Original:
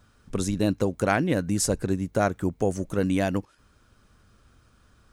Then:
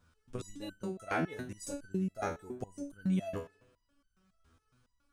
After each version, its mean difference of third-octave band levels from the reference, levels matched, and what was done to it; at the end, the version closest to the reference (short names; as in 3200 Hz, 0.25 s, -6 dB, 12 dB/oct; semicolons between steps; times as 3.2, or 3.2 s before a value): 8.5 dB: on a send: analogue delay 64 ms, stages 2048, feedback 69%, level -20 dB; on the sum: stepped resonator 7.2 Hz 82–1500 Hz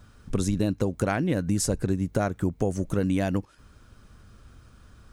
2.0 dB: compressor 2.5:1, threshold -30 dBFS, peak gain reduction 9 dB; low shelf 220 Hz +5.5 dB; gain +3.5 dB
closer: second